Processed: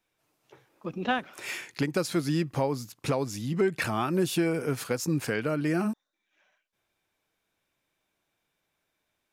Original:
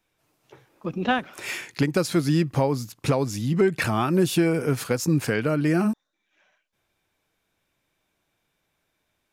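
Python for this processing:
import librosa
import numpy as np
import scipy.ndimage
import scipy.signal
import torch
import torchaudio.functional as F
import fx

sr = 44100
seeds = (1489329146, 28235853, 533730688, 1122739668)

y = fx.low_shelf(x, sr, hz=170.0, db=-5.5)
y = F.gain(torch.from_numpy(y), -4.0).numpy()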